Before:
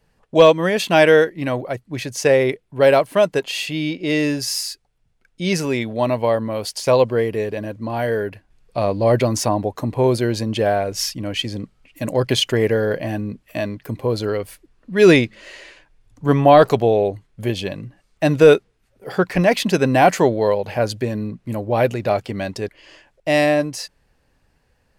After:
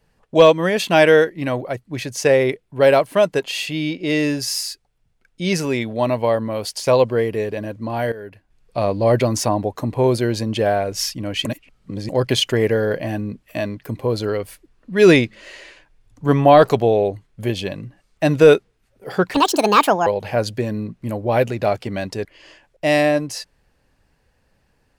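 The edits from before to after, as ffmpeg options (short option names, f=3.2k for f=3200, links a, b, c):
-filter_complex "[0:a]asplit=6[a][b][c][d][e][f];[a]atrim=end=8.12,asetpts=PTS-STARTPTS,afade=t=out:st=8.116:d=0.004:c=hsin:silence=0.16788[g];[b]atrim=start=8.12:end=11.452,asetpts=PTS-STARTPTS,afade=t=in:d=0.67:silence=0.16788[h];[c]atrim=start=11.448:end=12.092,asetpts=PTS-STARTPTS,areverse[i];[d]atrim=start=12.088:end=19.344[j];[e]atrim=start=19.34:end=20.5,asetpts=PTS-STARTPTS,asetrate=70560,aresample=44100,atrim=end_sample=31972,asetpts=PTS-STARTPTS[k];[f]atrim=start=20.496[l];[g][h]concat=n=2:v=0:a=1[m];[m][i]acrossfade=d=0.004:c1=hsin:c2=hsin[n];[n][j]acrossfade=d=0.004:c1=hsin:c2=hsin[o];[o][k]acrossfade=d=0.004:c1=hsin:c2=hsin[p];[p][l]acrossfade=d=0.004:c1=hsin:c2=hsin"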